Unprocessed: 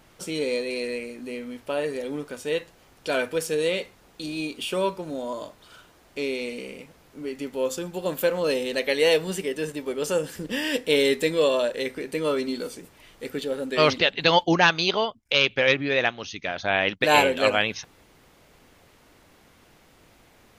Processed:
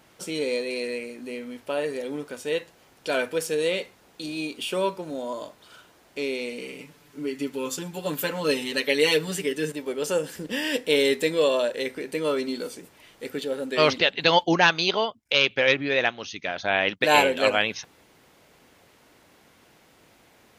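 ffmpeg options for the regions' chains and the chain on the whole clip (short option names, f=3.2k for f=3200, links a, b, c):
-filter_complex "[0:a]asettb=1/sr,asplit=3[a][b][c];[a]atrim=end=6.614[d];[b]atrim=start=6.61:end=9.72,asetpts=PTS-STARTPTS,afade=t=in:d=0.004:c=qsin,afade=t=out:st=3.106:d=0.004:c=qsin,equalizer=f=670:t=o:w=0.88:g=-6.5,aecho=1:1:6.9:0.92,atrim=end_sample=137151[e];[c]atrim=start=9.716[f];[d][e]acrossfade=d=0.004:c1=hsin:c2=qsin[g];[g][f]acrossfade=d=0.004:c1=qsin:c2=hsin,highpass=f=140:p=1,bandreject=f=1.2k:w=27"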